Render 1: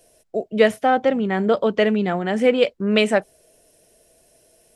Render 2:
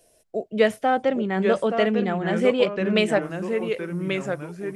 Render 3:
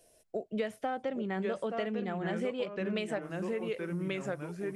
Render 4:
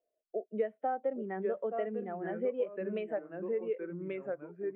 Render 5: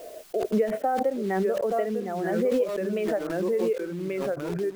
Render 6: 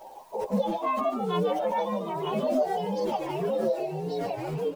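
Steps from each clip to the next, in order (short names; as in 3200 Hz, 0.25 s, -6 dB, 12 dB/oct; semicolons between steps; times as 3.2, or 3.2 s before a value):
echoes that change speed 0.771 s, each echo -2 st, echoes 3, each echo -6 dB; gain -3.5 dB
compressor, threshold -27 dBFS, peak gain reduction 13 dB; gain -4 dB
three-band isolator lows -13 dB, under 230 Hz, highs -18 dB, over 2800 Hz; spectral expander 1.5:1; gain +1.5 dB
in parallel at -6.5 dB: requantised 8-bit, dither none; on the sum: backwards sustainer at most 25 dB/s; gain +3.5 dB
inharmonic rescaling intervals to 129%; frequency-shifting echo 0.146 s, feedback 30%, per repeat +130 Hz, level -8 dB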